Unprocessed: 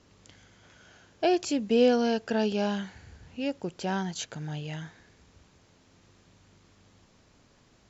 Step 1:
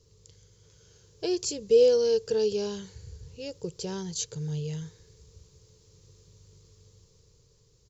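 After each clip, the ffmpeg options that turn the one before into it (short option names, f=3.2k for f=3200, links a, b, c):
-af "dynaudnorm=f=220:g=9:m=4dB,firequalizer=gain_entry='entry(140,0);entry(240,-23);entry(450,2);entry(670,-25);entry(980,-14);entry(1500,-20);entry(2600,-15);entry(4500,-2);entry(9900,2)':delay=0.05:min_phase=1,volume=2.5dB"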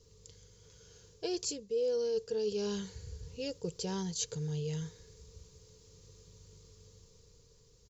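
-af "aecho=1:1:4.2:0.33,areverse,acompressor=threshold=-32dB:ratio=5,areverse"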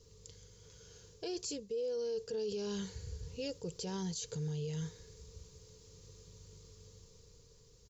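-af "alimiter=level_in=8.5dB:limit=-24dB:level=0:latency=1:release=23,volume=-8.5dB,volume=1dB"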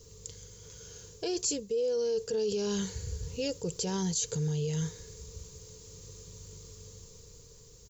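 -af "aexciter=amount=2:drive=3.4:freq=6.4k,volume=7dB"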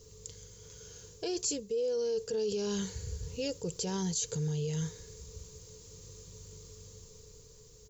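-af "aeval=exprs='val(0)+0.001*sin(2*PI*430*n/s)':c=same,volume=-2dB"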